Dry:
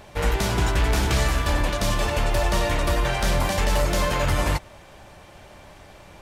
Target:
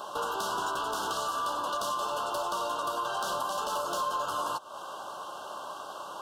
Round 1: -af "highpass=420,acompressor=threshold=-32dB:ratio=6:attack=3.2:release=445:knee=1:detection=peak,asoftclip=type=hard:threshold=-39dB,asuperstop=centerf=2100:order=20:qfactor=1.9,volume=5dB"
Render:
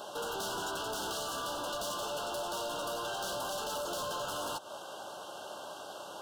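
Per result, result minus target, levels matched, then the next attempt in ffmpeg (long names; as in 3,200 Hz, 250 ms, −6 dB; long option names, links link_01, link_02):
hard clipping: distortion +11 dB; 1,000 Hz band −3.5 dB
-af "highpass=420,acompressor=threshold=-32dB:ratio=6:attack=3.2:release=445:knee=1:detection=peak,asoftclip=type=hard:threshold=-30.5dB,asuperstop=centerf=2100:order=20:qfactor=1.9,volume=5dB"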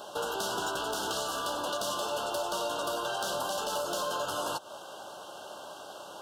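1,000 Hz band −4.0 dB
-af "highpass=420,equalizer=frequency=1100:width_type=o:width=0.44:gain=12,acompressor=threshold=-32dB:ratio=6:attack=3.2:release=445:knee=1:detection=peak,asoftclip=type=hard:threshold=-30.5dB,asuperstop=centerf=2100:order=20:qfactor=1.9,volume=5dB"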